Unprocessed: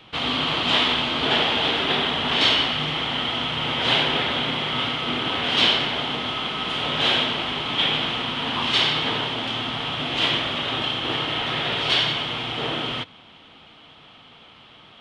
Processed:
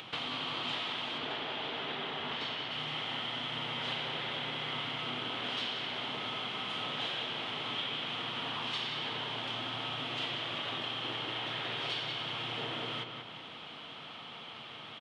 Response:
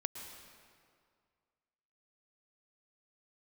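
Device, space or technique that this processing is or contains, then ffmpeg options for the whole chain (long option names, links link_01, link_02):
upward and downward compression: -filter_complex "[0:a]acompressor=mode=upward:threshold=-43dB:ratio=2.5,acompressor=threshold=-36dB:ratio=6,asettb=1/sr,asplit=3[link_01][link_02][link_03];[link_01]atrim=end=1.184[link_04];[link_02]atrim=start=1.18:end=2.71,asetpts=PTS-STARTPTS,afade=type=in:duration=0.004:curve=qsin,afade=type=out:start_time=1.526:duration=0.004:curve=qsin,aemphasis=mode=reproduction:type=cd[link_05];[link_03]atrim=start=2.706[link_06];[link_04][link_05]acrossfade=duration=0.004:curve1=hsin:curve2=qsin[link_07];[link_07][link_06]acrossfade=duration=0.004:curve1=qsin:curve2=hsin,highpass=frequency=100:width=0.5412,highpass=frequency=100:width=1.3066,equalizer=frequency=190:width=0.57:gain=-3.5,asplit=2[link_08][link_09];[link_09]adelay=186,lowpass=frequency=3800:poles=1,volume=-5dB,asplit=2[link_10][link_11];[link_11]adelay=186,lowpass=frequency=3800:poles=1,volume=0.47,asplit=2[link_12][link_13];[link_13]adelay=186,lowpass=frequency=3800:poles=1,volume=0.47,asplit=2[link_14][link_15];[link_15]adelay=186,lowpass=frequency=3800:poles=1,volume=0.47,asplit=2[link_16][link_17];[link_17]adelay=186,lowpass=frequency=3800:poles=1,volume=0.47,asplit=2[link_18][link_19];[link_19]adelay=186,lowpass=frequency=3800:poles=1,volume=0.47[link_20];[link_08][link_10][link_12][link_14][link_16][link_18][link_20]amix=inputs=7:normalize=0"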